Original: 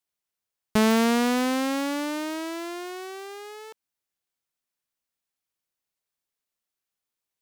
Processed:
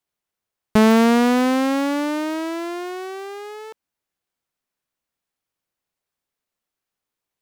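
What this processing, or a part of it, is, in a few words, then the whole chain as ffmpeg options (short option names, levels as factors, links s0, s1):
behind a face mask: -af "highshelf=f=2500:g=-7.5,volume=2.24"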